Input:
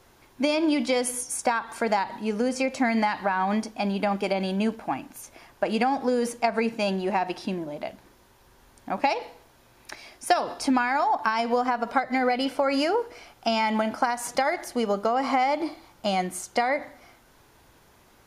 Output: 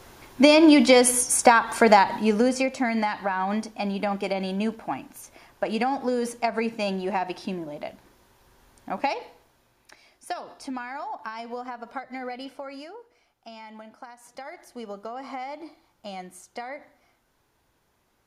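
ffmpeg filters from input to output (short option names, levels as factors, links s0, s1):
-af "volume=5.96,afade=t=out:st=2.03:d=0.73:silence=0.316228,afade=t=out:st=8.91:d=1.01:silence=0.334965,afade=t=out:st=12.4:d=0.53:silence=0.398107,afade=t=in:st=14.21:d=0.59:silence=0.446684"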